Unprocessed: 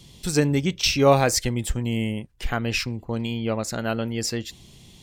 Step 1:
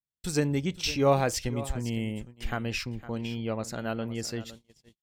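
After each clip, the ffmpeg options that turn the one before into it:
ffmpeg -i in.wav -af "aecho=1:1:509:0.168,agate=range=-49dB:threshold=-38dB:ratio=16:detection=peak,adynamicequalizer=threshold=0.0126:dfrequency=2000:dqfactor=0.7:tfrequency=2000:tqfactor=0.7:attack=5:release=100:ratio=0.375:range=2:mode=cutabove:tftype=highshelf,volume=-6dB" out.wav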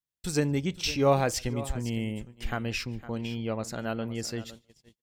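ffmpeg -i in.wav -filter_complex "[0:a]asplit=2[link_01][link_02];[link_02]adelay=145.8,volume=-29dB,highshelf=frequency=4000:gain=-3.28[link_03];[link_01][link_03]amix=inputs=2:normalize=0" out.wav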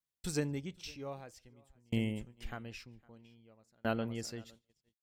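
ffmpeg -i in.wav -af "aeval=exprs='val(0)*pow(10,-37*if(lt(mod(0.52*n/s,1),2*abs(0.52)/1000),1-mod(0.52*n/s,1)/(2*abs(0.52)/1000),(mod(0.52*n/s,1)-2*abs(0.52)/1000)/(1-2*abs(0.52)/1000))/20)':channel_layout=same" out.wav

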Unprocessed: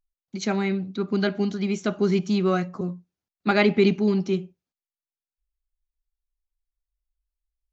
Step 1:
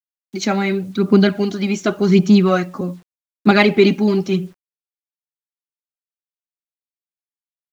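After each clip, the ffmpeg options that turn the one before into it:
ffmpeg -i in.wav -af "aphaser=in_gain=1:out_gain=1:delay=3.7:decay=0.48:speed=0.88:type=sinusoidal,acrusher=bits=9:mix=0:aa=0.000001,volume=7dB" out.wav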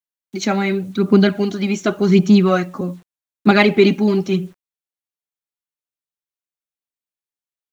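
ffmpeg -i in.wav -af "equalizer=frequency=4900:width_type=o:width=0.22:gain=-4" out.wav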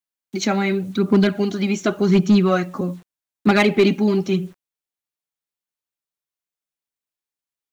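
ffmpeg -i in.wav -filter_complex "[0:a]asplit=2[link_01][link_02];[link_02]acompressor=threshold=-23dB:ratio=6,volume=-1.5dB[link_03];[link_01][link_03]amix=inputs=2:normalize=0,asoftclip=type=hard:threshold=-4.5dB,volume=-4dB" out.wav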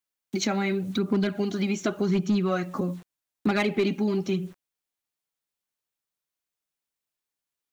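ffmpeg -i in.wav -af "acompressor=threshold=-29dB:ratio=2.5,volume=2dB" out.wav

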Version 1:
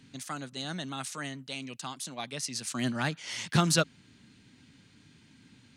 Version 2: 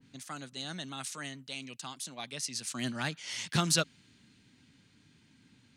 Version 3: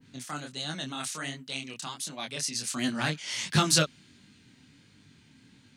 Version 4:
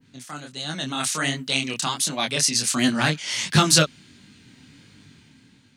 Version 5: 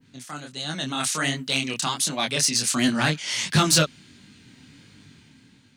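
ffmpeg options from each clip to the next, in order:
ffmpeg -i in.wav -af "adynamicequalizer=threshold=0.00794:dfrequency=1900:dqfactor=0.7:tfrequency=1900:tqfactor=0.7:attack=5:release=100:ratio=0.375:range=2.5:mode=boostabove:tftype=highshelf,volume=-5dB" out.wav
ffmpeg -i in.wav -af "flanger=delay=19.5:depth=7.8:speed=1.4,volume=8dB" out.wav
ffmpeg -i in.wav -af "dynaudnorm=framelen=210:gausssize=9:maxgain=13dB" out.wav
ffmpeg -i in.wav -af "asoftclip=type=tanh:threshold=-10dB" out.wav

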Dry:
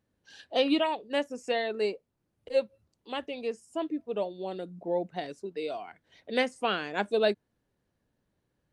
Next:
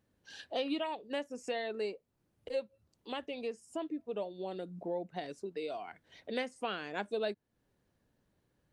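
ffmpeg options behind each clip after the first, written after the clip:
ffmpeg -i in.wav -af "acompressor=threshold=-42dB:ratio=2,volume=1.5dB" out.wav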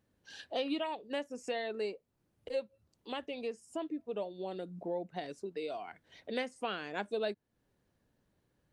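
ffmpeg -i in.wav -af anull out.wav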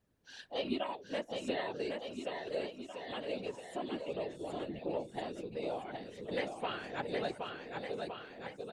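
ffmpeg -i in.wav -filter_complex "[0:a]afftfilt=real='hypot(re,im)*cos(2*PI*random(0))':imag='hypot(re,im)*sin(2*PI*random(1))':win_size=512:overlap=0.75,asplit=2[link_01][link_02];[link_02]aecho=0:1:770|1463|2087|2648|3153:0.631|0.398|0.251|0.158|0.1[link_03];[link_01][link_03]amix=inputs=2:normalize=0,volume=4dB" out.wav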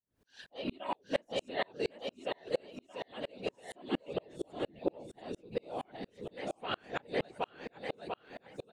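ffmpeg -i in.wav -af "aeval=exprs='val(0)*pow(10,-38*if(lt(mod(-4.3*n/s,1),2*abs(-4.3)/1000),1-mod(-4.3*n/s,1)/(2*abs(-4.3)/1000),(mod(-4.3*n/s,1)-2*abs(-4.3)/1000)/(1-2*abs(-4.3)/1000))/20)':channel_layout=same,volume=9.5dB" out.wav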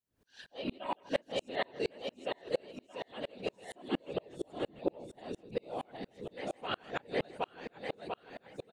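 ffmpeg -i in.wav -af "aecho=1:1:161:0.0891" out.wav

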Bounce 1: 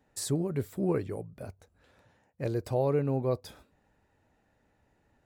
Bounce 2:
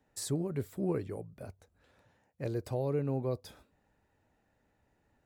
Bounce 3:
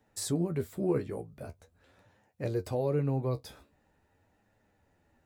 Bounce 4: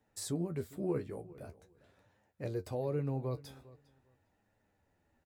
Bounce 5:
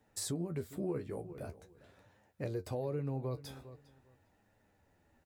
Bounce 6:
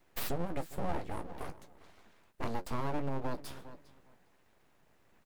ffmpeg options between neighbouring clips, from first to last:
ffmpeg -i in.wav -filter_complex "[0:a]acrossover=split=470|3000[link_01][link_02][link_03];[link_02]acompressor=threshold=-34dB:ratio=6[link_04];[link_01][link_04][link_03]amix=inputs=3:normalize=0,volume=-3.5dB" out.wav
ffmpeg -i in.wav -af "flanger=delay=9:depth=6.4:regen=41:speed=0.44:shape=triangular,volume=7dB" out.wav
ffmpeg -i in.wav -filter_complex "[0:a]asplit=2[link_01][link_02];[link_02]adelay=403,lowpass=frequency=4400:poles=1,volume=-20dB,asplit=2[link_03][link_04];[link_04]adelay=403,lowpass=frequency=4400:poles=1,volume=0.18[link_05];[link_01][link_03][link_05]amix=inputs=3:normalize=0,volume=-5.5dB" out.wav
ffmpeg -i in.wav -af "acompressor=threshold=-41dB:ratio=2.5,volume=4.5dB" out.wav
ffmpeg -i in.wav -af "aeval=exprs='abs(val(0))':channel_layout=same,volume=5dB" out.wav

